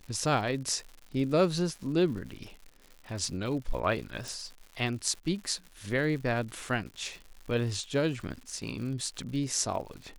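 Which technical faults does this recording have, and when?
crackle 140/s -40 dBFS
4.28 pop

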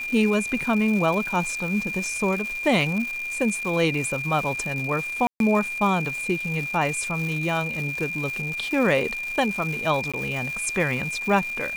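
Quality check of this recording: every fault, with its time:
crackle 430/s -30 dBFS
tone 2400 Hz -28 dBFS
5.27–5.4 gap 0.132 s
10.12–10.14 gap 16 ms

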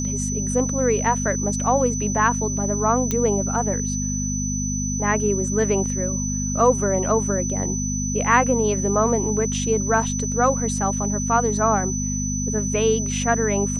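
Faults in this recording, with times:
hum 50 Hz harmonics 5 -26 dBFS
tone 6000 Hz -27 dBFS
3.11 pop -9 dBFS

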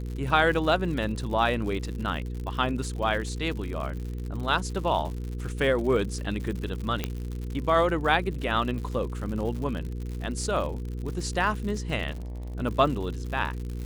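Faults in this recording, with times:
crackle 110/s -34 dBFS
hum 60 Hz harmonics 8 -33 dBFS
7.04 pop -13 dBFS
12.11–12.55 clipped -33 dBFS

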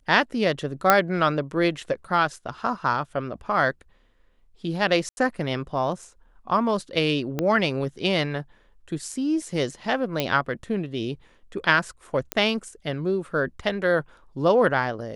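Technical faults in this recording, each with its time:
0.9 pop -1 dBFS
5.09–5.17 gap 81 ms
7.39 pop -12 dBFS
10.2 pop -9 dBFS
12.32 pop -8 dBFS

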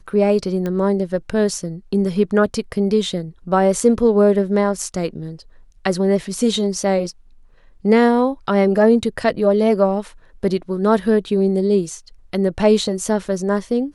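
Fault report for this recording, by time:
0.66 pop -13 dBFS

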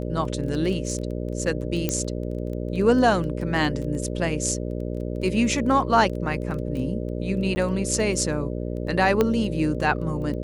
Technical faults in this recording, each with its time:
buzz 60 Hz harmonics 10 -29 dBFS
crackle 12/s -31 dBFS
1.89 pop -9 dBFS
7.55–7.56 gap 10 ms
9.21 pop -8 dBFS

